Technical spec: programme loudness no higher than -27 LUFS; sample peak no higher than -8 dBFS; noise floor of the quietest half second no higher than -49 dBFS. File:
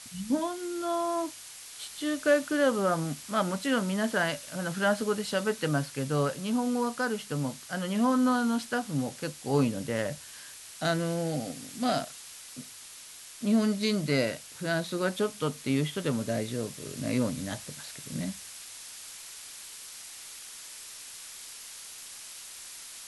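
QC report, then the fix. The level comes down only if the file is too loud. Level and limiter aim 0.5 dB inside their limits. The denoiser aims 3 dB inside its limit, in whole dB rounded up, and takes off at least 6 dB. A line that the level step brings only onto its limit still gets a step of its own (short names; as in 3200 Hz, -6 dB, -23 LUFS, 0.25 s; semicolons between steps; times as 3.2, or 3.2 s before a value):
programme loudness -30.0 LUFS: OK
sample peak -12.5 dBFS: OK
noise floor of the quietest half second -47 dBFS: fail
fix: denoiser 6 dB, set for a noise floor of -47 dBFS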